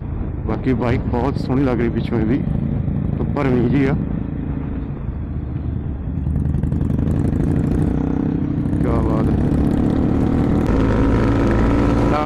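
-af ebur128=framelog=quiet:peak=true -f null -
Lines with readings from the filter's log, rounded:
Integrated loudness:
  I:         -19.1 LUFS
  Threshold: -29.1 LUFS
Loudness range:
  LRA:         4.8 LU
  Threshold: -39.5 LUFS
  LRA low:   -22.0 LUFS
  LRA high:  -17.2 LUFS
True peak:
  Peak:      -10.1 dBFS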